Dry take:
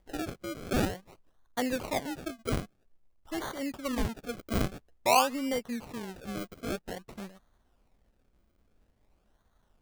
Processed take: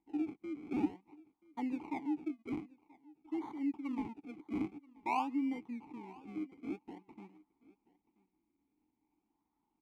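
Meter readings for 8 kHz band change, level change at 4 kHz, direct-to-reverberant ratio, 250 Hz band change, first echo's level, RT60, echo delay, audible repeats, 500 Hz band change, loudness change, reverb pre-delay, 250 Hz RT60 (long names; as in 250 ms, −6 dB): below −25 dB, −22.0 dB, no reverb audible, −2.0 dB, −23.0 dB, no reverb audible, 981 ms, 1, −15.0 dB, −7.0 dB, no reverb audible, no reverb audible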